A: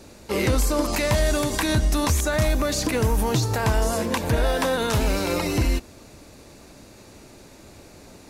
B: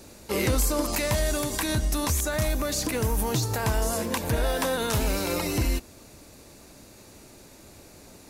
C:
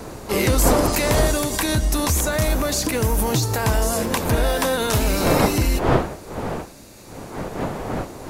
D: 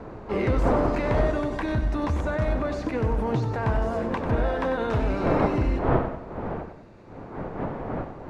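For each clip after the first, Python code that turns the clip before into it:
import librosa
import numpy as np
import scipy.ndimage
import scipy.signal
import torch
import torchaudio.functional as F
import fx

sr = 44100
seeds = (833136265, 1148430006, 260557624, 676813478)

y1 = fx.high_shelf(x, sr, hz=8600.0, db=10.0)
y1 = fx.rider(y1, sr, range_db=4, speed_s=2.0)
y1 = F.gain(torch.from_numpy(y1), -4.5).numpy()
y2 = fx.dmg_wind(y1, sr, seeds[0], corner_hz=640.0, level_db=-32.0)
y2 = F.gain(torch.from_numpy(y2), 5.5).numpy()
y3 = scipy.signal.sosfilt(scipy.signal.butter(2, 1700.0, 'lowpass', fs=sr, output='sos'), y2)
y3 = fx.echo_feedback(y3, sr, ms=95, feedback_pct=47, wet_db=-10.0)
y3 = F.gain(torch.from_numpy(y3), -4.5).numpy()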